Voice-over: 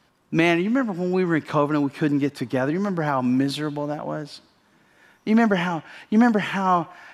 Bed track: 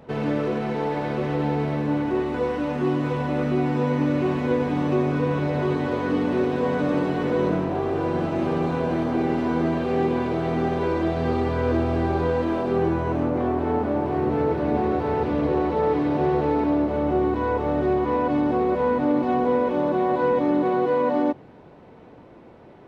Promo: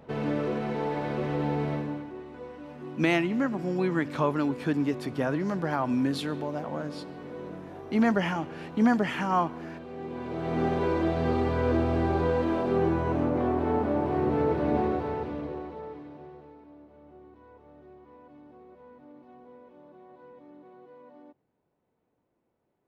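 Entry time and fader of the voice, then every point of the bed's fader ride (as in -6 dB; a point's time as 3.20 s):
2.65 s, -5.5 dB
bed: 1.74 s -4.5 dB
2.13 s -17.5 dB
9.97 s -17.5 dB
10.62 s -3 dB
14.80 s -3 dB
16.61 s -30 dB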